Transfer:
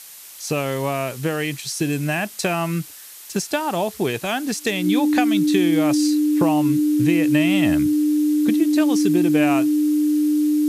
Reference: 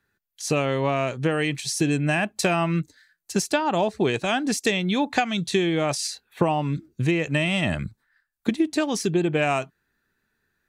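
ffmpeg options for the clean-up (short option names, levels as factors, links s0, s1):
-af "bandreject=f=300:w=30,afftdn=nr=30:nf=-39"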